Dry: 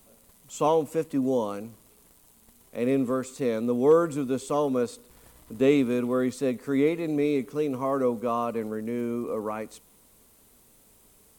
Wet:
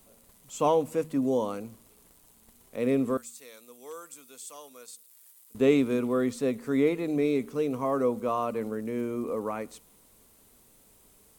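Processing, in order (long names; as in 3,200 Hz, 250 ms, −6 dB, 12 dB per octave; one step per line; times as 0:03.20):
0:03.17–0:05.55: first difference
hum removal 78.13 Hz, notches 3
level −1 dB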